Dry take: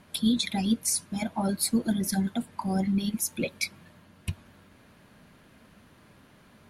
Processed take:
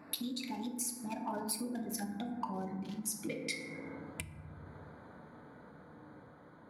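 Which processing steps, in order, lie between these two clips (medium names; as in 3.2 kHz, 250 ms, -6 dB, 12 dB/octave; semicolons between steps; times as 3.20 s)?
local Wiener filter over 15 samples; Doppler pass-by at 2.52 s, 28 m/s, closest 24 m; FDN reverb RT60 1.2 s, low-frequency decay 1.25×, high-frequency decay 0.35×, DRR 1.5 dB; compression 6:1, threshold -50 dBFS, peak gain reduction 24.5 dB; high-pass 310 Hz 6 dB/octave; trim +14.5 dB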